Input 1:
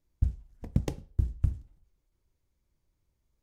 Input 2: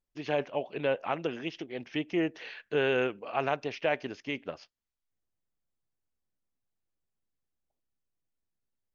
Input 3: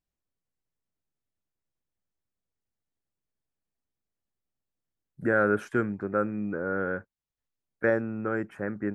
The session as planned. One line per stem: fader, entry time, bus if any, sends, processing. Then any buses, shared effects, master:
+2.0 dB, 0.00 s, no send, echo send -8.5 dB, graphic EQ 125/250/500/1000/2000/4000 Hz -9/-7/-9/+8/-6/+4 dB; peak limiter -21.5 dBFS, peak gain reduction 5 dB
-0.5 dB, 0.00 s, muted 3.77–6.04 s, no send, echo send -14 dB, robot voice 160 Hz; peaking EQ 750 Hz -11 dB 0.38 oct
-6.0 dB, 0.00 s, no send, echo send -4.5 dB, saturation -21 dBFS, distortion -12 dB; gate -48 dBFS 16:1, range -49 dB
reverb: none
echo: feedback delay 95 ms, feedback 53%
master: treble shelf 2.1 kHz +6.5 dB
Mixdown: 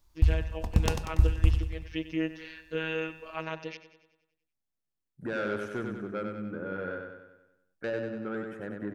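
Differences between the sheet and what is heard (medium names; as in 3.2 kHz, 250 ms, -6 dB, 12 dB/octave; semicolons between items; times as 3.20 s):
stem 1 +2.0 dB -> +11.0 dB; stem 3: missing gate -48 dBFS 16:1, range -49 dB; master: missing treble shelf 2.1 kHz +6.5 dB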